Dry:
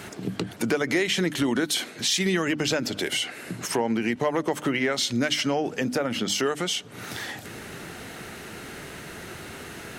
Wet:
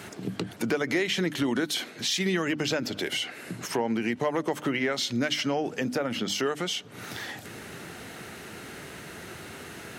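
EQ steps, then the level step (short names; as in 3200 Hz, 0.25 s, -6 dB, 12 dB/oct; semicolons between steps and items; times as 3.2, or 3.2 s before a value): HPF 62 Hz; dynamic EQ 8800 Hz, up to -6 dB, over -46 dBFS, Q 1.4; -2.5 dB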